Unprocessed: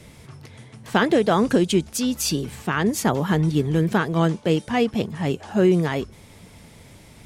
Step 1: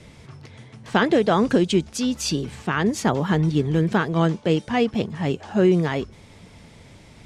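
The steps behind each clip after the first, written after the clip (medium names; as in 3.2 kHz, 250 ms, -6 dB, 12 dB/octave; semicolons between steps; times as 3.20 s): low-pass 6.9 kHz 12 dB/octave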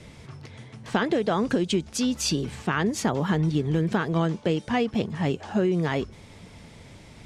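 compression 5:1, threshold -20 dBFS, peak gain reduction 7.5 dB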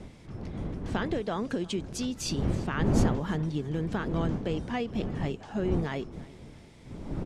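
wind noise 230 Hz -26 dBFS; feedback delay 333 ms, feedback 39%, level -21 dB; trim -7.5 dB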